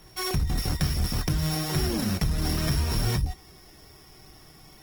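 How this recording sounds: a buzz of ramps at a fixed pitch in blocks of 8 samples; Opus

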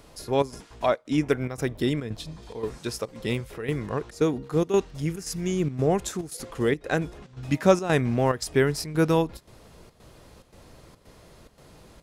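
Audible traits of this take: chopped level 1.9 Hz, depth 65%, duty 80%

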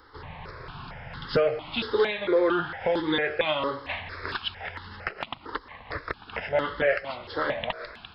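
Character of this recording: notches that jump at a steady rate 4.4 Hz 670–2400 Hz

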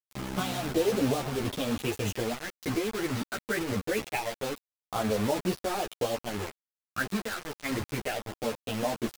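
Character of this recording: phasing stages 6, 0.24 Hz, lowest notch 770–2200 Hz; a quantiser's noise floor 6-bit, dither none; a shimmering, thickened sound

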